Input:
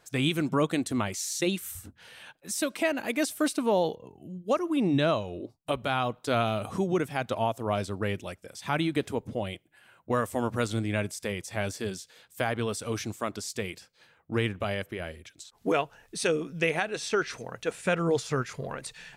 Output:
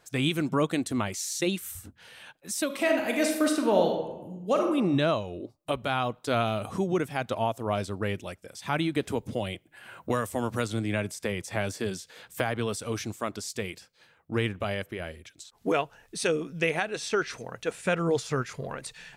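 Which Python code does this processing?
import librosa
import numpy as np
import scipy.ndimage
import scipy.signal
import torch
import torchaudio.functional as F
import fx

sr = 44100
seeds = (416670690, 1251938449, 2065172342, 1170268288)

y = fx.reverb_throw(x, sr, start_s=2.65, length_s=2.03, rt60_s=0.97, drr_db=2.0)
y = fx.band_squash(y, sr, depth_pct=70, at=(9.08, 12.76))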